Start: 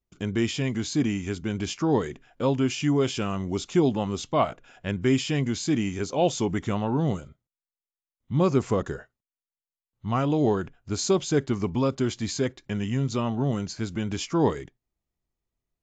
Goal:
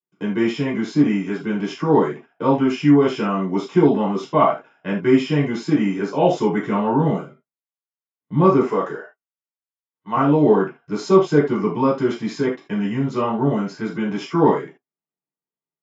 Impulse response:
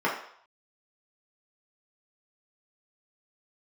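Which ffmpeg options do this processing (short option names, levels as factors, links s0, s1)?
-filter_complex "[0:a]asettb=1/sr,asplit=3[s0][s1][s2];[s0]atrim=end=8.634[s3];[s1]atrim=start=8.63:end=10.16,asetpts=PTS-STARTPTS,afade=t=in:d=0.004:c=qsin,afade=t=out:st=1.526:d=0.004:c=qsin,highpass=f=470:p=1[s4];[s2]atrim=start=10.156[s5];[s3][s4]acrossfade=d=0.004:c1=hsin:c2=qsin[s6];[s6][s5]acrossfade=d=0.004:c1=qsin:c2=hsin,agate=range=0.2:threshold=0.00501:ratio=16:detection=peak[s7];[1:a]atrim=start_sample=2205,afade=t=out:st=0.14:d=0.01,atrim=end_sample=6615[s8];[s7][s8]afir=irnorm=-1:irlink=0,volume=0.501"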